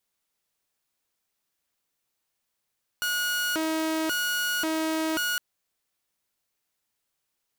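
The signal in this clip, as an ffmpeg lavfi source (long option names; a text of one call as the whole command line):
ffmpeg -f lavfi -i "aevalsrc='0.075*(2*mod((884*t+566/0.93*(0.5-abs(mod(0.93*t,1)-0.5))),1)-1)':duration=2.36:sample_rate=44100" out.wav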